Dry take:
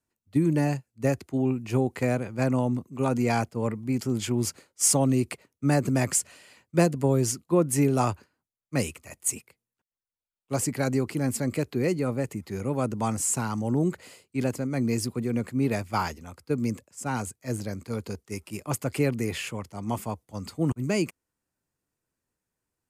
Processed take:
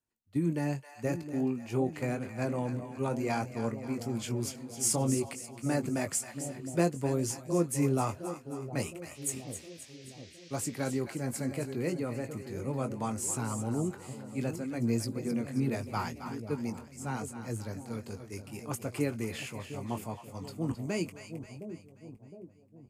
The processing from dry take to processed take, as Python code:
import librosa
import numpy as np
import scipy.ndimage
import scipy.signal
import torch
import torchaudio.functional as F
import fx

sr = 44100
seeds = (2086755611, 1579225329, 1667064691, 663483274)

y = fx.echo_split(x, sr, split_hz=710.0, low_ms=713, high_ms=266, feedback_pct=52, wet_db=-10.0)
y = fx.dmg_noise_band(y, sr, seeds[0], low_hz=1800.0, high_hz=6200.0, level_db=-50.0, at=(9.14, 10.98), fade=0.02)
y = fx.chorus_voices(y, sr, voices=4, hz=0.73, base_ms=20, depth_ms=3.0, mix_pct=30)
y = y * librosa.db_to_amplitude(-4.5)